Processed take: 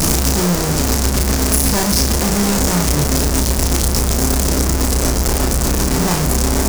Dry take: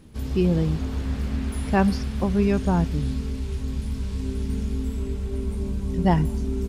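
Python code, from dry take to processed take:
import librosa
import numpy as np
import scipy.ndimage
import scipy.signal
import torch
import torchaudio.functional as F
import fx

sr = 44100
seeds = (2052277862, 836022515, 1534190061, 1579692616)

y = np.sign(x) * np.sqrt(np.mean(np.square(x)))
y = fx.high_shelf_res(y, sr, hz=4400.0, db=7.5, q=1.5)
y = fx.doubler(y, sr, ms=34.0, db=-4.5)
y = F.gain(torch.from_numpy(y), 6.5).numpy()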